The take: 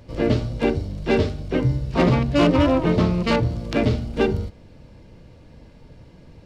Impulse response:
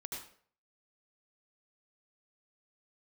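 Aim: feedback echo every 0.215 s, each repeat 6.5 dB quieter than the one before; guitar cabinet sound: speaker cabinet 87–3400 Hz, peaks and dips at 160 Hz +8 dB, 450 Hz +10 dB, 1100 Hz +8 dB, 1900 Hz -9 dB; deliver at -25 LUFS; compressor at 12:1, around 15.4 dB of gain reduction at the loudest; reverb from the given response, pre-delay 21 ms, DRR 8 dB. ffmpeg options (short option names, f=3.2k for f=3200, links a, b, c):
-filter_complex "[0:a]acompressor=threshold=-29dB:ratio=12,aecho=1:1:215|430|645|860|1075|1290:0.473|0.222|0.105|0.0491|0.0231|0.0109,asplit=2[a][b];[1:a]atrim=start_sample=2205,adelay=21[c];[b][c]afir=irnorm=-1:irlink=0,volume=-6.5dB[d];[a][d]amix=inputs=2:normalize=0,highpass=87,equalizer=f=160:t=q:w=4:g=8,equalizer=f=450:t=q:w=4:g=10,equalizer=f=1.1k:t=q:w=4:g=8,equalizer=f=1.9k:t=q:w=4:g=-9,lowpass=f=3.4k:w=0.5412,lowpass=f=3.4k:w=1.3066,volume=4dB"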